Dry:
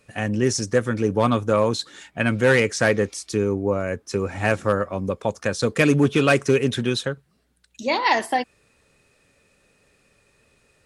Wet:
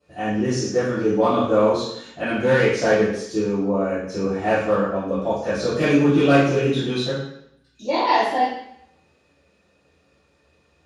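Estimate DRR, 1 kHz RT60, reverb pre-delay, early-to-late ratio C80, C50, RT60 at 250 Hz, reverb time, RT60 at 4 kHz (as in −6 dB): −19.0 dB, 0.70 s, 3 ms, 4.5 dB, 0.5 dB, 0.75 s, 0.70 s, 0.70 s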